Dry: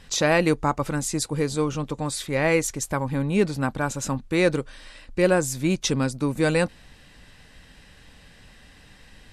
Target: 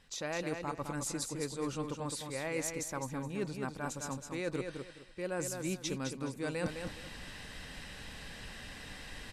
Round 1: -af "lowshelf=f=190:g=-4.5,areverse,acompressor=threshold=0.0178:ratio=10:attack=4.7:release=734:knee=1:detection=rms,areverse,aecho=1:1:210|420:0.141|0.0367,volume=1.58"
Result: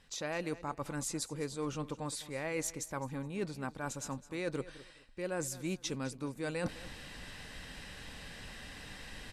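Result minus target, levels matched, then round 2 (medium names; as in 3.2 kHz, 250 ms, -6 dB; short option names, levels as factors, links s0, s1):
echo-to-direct -11 dB
-af "lowshelf=f=190:g=-4.5,areverse,acompressor=threshold=0.0178:ratio=10:attack=4.7:release=734:knee=1:detection=rms,areverse,aecho=1:1:210|420|630:0.501|0.13|0.0339,volume=1.58"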